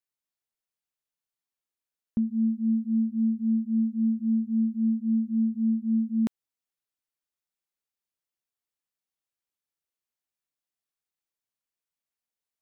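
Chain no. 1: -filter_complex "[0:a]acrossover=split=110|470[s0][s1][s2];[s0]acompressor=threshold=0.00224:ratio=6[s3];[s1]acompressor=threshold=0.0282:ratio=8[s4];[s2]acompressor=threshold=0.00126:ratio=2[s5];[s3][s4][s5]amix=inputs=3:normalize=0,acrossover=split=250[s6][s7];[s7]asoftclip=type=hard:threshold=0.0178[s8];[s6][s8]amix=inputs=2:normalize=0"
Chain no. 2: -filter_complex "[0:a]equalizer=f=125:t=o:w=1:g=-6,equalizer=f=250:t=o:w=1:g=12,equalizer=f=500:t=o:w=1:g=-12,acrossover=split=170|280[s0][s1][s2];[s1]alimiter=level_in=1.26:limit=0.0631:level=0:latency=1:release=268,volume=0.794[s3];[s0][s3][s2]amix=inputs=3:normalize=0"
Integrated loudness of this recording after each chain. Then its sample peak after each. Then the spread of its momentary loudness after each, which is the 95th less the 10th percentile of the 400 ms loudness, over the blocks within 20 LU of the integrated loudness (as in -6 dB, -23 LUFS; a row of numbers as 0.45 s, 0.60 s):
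-33.5 LUFS, -22.5 LUFS; -23.0 dBFS, -15.5 dBFS; 3 LU, 3 LU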